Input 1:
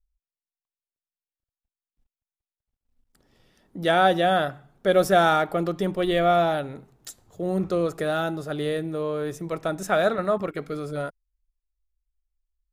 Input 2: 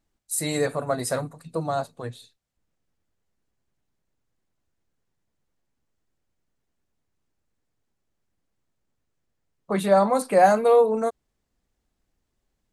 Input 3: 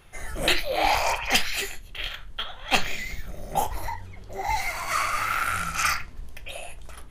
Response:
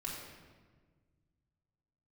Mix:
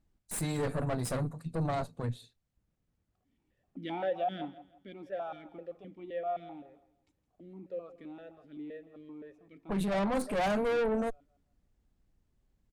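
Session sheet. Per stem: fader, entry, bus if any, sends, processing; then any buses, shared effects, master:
4.43 s -5 dB -> 4.97 s -14.5 dB, 0.00 s, no send, echo send -17 dB, sample leveller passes 1; vowel sequencer 7.7 Hz
-0.5 dB, 0.00 s, no send, no echo send, low shelf 480 Hz +4.5 dB; tube stage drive 23 dB, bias 0.75
off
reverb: off
echo: feedback echo 0.165 s, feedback 31%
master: tone controls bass +6 dB, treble -3 dB; limiter -24.5 dBFS, peak gain reduction 8.5 dB

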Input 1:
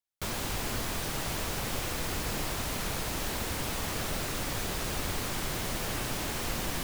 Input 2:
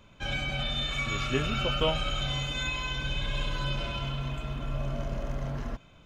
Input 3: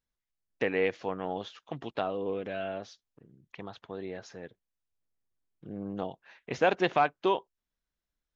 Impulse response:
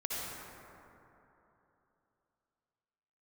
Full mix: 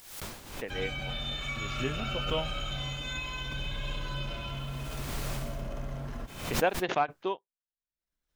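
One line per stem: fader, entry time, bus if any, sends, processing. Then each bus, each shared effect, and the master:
-5.0 dB, 0.00 s, no send, auto duck -23 dB, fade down 0.35 s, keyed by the third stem
-4.5 dB, 0.50 s, no send, dry
-1.0 dB, 0.00 s, no send, upward expander 2.5:1, over -37 dBFS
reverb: off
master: upward compressor, threshold -44 dBFS; backwards sustainer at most 73 dB/s

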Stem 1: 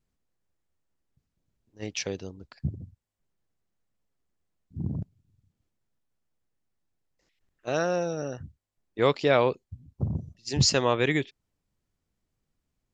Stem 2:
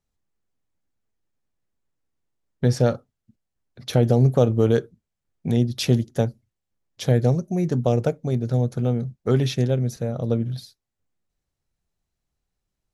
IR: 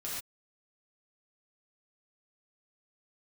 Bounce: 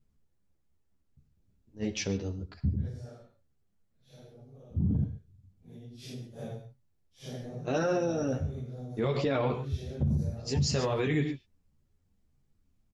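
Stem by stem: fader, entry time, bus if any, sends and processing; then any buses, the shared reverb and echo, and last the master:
-0.5 dB, 0.00 s, send -10.5 dB, low shelf 360 Hz +11.5 dB; ensemble effect
2.96 s -15.5 dB -> 3.32 s -24 dB -> 5.77 s -24 dB -> 6.52 s -11.5 dB, 0.25 s, send -9.5 dB, phase scrambler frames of 0.2 s; compressor 6:1, threshold -23 dBFS, peak gain reduction 11 dB; auto duck -7 dB, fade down 1.65 s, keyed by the first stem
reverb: on, pre-delay 3 ms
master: limiter -20.5 dBFS, peak gain reduction 16 dB

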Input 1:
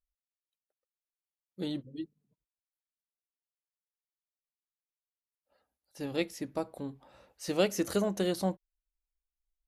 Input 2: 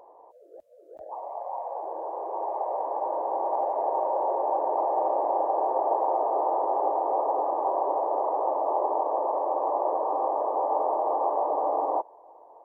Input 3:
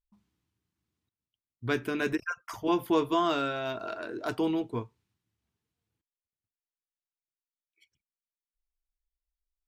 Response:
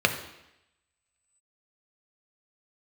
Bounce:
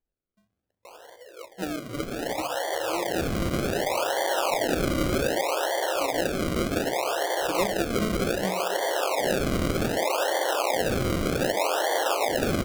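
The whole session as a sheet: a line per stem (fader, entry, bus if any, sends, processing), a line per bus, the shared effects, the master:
+1.5 dB, 0.00 s, send -16 dB, dry
+0.5 dB, 0.85 s, send -15.5 dB, low shelf 490 Hz +5.5 dB; requantised 12-bit, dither triangular; auto duck -10 dB, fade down 0.85 s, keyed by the first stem
-8.0 dB, 0.25 s, send -14.5 dB, dry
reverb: on, RT60 0.85 s, pre-delay 3 ms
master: decimation with a swept rate 34×, swing 100% 0.65 Hz; compressor 2:1, threshold -26 dBFS, peak gain reduction 7 dB

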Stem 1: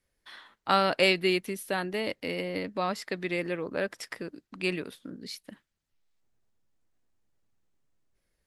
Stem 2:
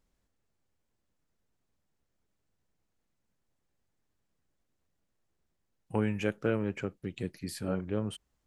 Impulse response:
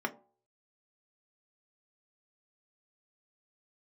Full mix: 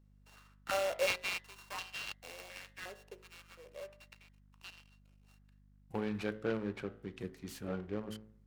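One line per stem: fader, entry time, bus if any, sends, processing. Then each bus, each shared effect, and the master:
2.57 s -15 dB -> 3.11 s -24 dB, 0.00 s, no send, sample sorter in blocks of 16 samples; stepped high-pass 2.8 Hz 430–2900 Hz; auto duck -9 dB, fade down 1.90 s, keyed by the second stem
-7.5 dB, 0.00 s, send -13.5 dB, hum 50 Hz, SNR 17 dB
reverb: on, RT60 0.45 s, pre-delay 3 ms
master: de-hum 53.99 Hz, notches 39; noise-modulated delay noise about 1300 Hz, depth 0.034 ms

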